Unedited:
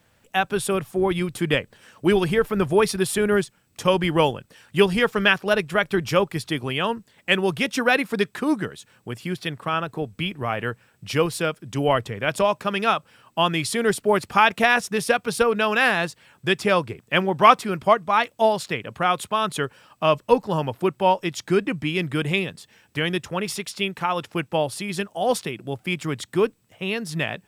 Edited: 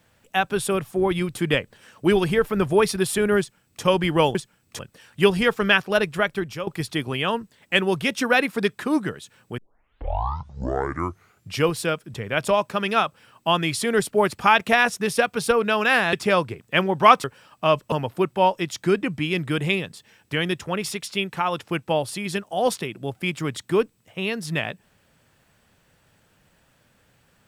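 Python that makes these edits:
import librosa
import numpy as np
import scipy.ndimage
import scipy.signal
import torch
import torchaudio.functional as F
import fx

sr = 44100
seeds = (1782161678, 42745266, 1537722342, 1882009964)

y = fx.edit(x, sr, fx.duplicate(start_s=3.39, length_s=0.44, to_s=4.35),
    fx.fade_out_to(start_s=5.72, length_s=0.51, floor_db=-15.0),
    fx.tape_start(start_s=9.14, length_s=2.01),
    fx.cut(start_s=11.7, length_s=0.35),
    fx.cut(start_s=16.04, length_s=0.48),
    fx.cut(start_s=17.63, length_s=2.0),
    fx.cut(start_s=20.31, length_s=0.25), tone=tone)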